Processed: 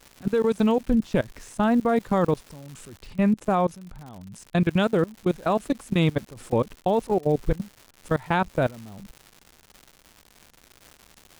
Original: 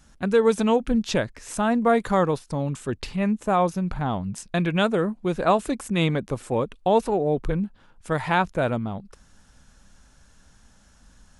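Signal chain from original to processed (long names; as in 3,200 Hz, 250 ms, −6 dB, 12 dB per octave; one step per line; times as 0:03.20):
output level in coarse steps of 23 dB
surface crackle 280 per second −36 dBFS, from 0:02.96 110 per second, from 0:04.68 280 per second
low-shelf EQ 490 Hz +5.5 dB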